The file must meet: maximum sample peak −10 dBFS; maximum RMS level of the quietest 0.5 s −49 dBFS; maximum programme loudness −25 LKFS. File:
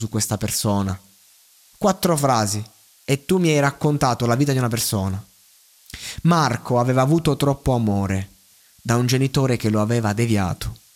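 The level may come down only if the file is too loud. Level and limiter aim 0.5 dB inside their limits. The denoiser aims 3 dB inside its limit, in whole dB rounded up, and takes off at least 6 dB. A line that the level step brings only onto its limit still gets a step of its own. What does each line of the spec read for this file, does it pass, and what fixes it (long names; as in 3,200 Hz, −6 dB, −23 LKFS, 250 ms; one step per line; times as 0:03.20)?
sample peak −4.0 dBFS: out of spec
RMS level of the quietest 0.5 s −54 dBFS: in spec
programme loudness −20.5 LKFS: out of spec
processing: level −5 dB
brickwall limiter −10.5 dBFS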